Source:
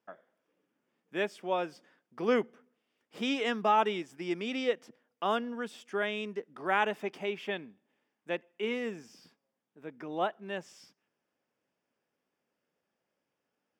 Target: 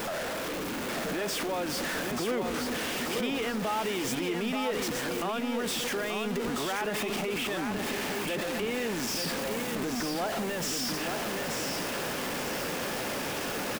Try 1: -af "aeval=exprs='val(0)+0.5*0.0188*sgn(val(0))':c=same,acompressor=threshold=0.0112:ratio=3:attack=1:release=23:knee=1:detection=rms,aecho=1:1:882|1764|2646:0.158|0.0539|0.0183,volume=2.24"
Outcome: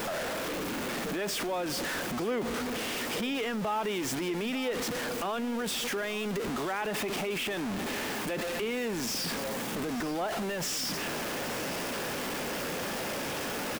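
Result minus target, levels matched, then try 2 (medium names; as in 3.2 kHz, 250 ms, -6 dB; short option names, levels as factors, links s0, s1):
echo-to-direct -11 dB
-af "aeval=exprs='val(0)+0.5*0.0188*sgn(val(0))':c=same,acompressor=threshold=0.0112:ratio=3:attack=1:release=23:knee=1:detection=rms,aecho=1:1:882|1764|2646|3528:0.562|0.191|0.065|0.0221,volume=2.24"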